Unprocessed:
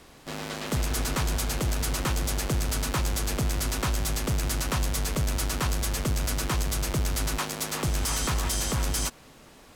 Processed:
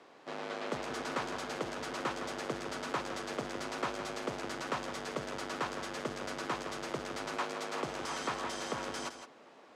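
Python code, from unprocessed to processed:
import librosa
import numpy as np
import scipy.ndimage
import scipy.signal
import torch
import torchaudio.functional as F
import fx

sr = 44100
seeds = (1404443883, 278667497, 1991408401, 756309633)

p1 = fx.bandpass_edges(x, sr, low_hz=400.0, high_hz=5800.0)
p2 = fx.high_shelf(p1, sr, hz=2000.0, db=-12.0)
y = p2 + fx.echo_single(p2, sr, ms=163, db=-10.0, dry=0)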